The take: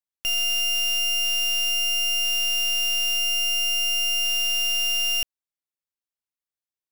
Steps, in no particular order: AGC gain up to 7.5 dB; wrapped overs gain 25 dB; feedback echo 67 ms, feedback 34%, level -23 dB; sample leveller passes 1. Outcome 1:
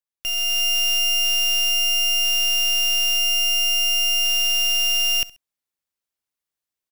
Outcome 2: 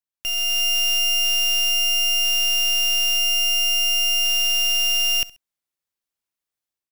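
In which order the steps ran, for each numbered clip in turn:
wrapped overs > feedback echo > AGC > sample leveller; wrapped overs > AGC > feedback echo > sample leveller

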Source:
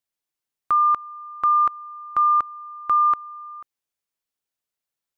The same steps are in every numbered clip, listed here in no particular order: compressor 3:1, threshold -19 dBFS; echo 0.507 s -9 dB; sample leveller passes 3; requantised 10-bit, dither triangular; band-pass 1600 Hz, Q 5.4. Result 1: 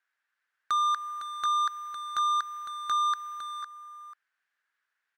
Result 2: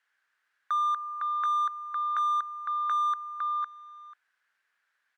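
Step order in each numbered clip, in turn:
requantised > compressor > band-pass > sample leveller > echo; echo > sample leveller > requantised > band-pass > compressor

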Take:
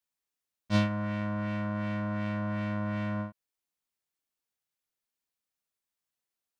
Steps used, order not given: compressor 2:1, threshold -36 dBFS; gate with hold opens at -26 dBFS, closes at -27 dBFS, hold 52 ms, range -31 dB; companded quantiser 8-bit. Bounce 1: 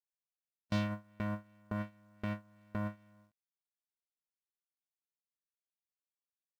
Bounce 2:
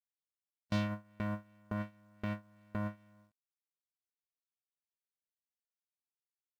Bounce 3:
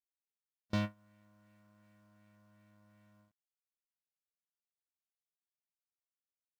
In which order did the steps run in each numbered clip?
gate with hold > compressor > companded quantiser; gate with hold > companded quantiser > compressor; compressor > gate with hold > companded quantiser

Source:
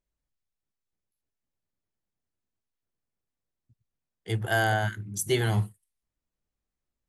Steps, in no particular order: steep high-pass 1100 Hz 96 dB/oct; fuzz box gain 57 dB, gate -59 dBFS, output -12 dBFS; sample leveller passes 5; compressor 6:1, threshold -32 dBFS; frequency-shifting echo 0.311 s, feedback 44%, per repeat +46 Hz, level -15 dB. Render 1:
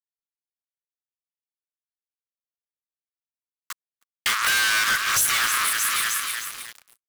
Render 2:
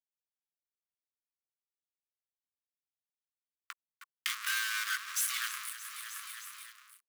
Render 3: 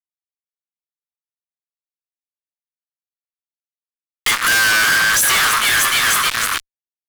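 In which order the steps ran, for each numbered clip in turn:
fuzz box > frequency-shifting echo > steep high-pass > compressor > sample leveller; fuzz box > sample leveller > frequency-shifting echo > compressor > steep high-pass; frequency-shifting echo > sample leveller > compressor > steep high-pass > fuzz box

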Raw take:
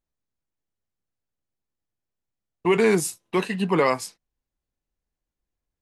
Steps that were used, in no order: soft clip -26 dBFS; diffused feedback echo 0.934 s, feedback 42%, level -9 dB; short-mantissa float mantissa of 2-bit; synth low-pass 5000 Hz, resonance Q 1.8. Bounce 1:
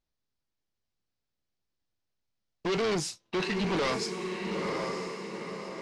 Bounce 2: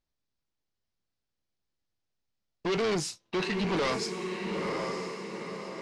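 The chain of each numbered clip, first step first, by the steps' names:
diffused feedback echo > soft clip > short-mantissa float > synth low-pass; diffused feedback echo > short-mantissa float > soft clip > synth low-pass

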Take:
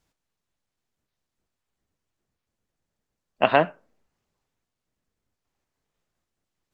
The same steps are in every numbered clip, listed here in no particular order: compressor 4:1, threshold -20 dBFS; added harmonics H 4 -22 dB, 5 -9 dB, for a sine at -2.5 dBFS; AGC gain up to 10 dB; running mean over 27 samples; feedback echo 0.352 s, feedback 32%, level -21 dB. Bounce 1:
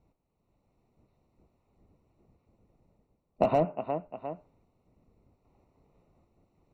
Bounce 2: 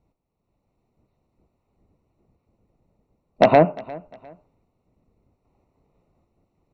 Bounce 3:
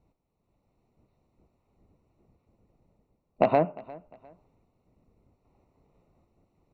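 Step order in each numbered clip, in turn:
feedback echo > AGC > added harmonics > compressor > running mean; compressor > running mean > AGC > added harmonics > feedback echo; running mean > added harmonics > AGC > compressor > feedback echo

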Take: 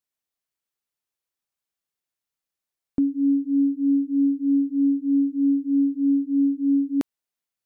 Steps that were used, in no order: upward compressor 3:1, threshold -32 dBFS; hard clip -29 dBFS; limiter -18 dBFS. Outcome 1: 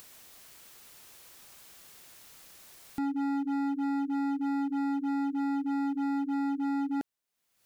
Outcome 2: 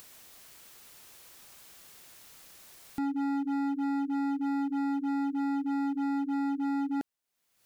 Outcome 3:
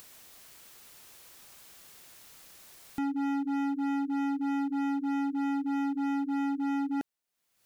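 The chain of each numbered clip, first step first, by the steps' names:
upward compressor > limiter > hard clip; limiter > upward compressor > hard clip; upward compressor > hard clip > limiter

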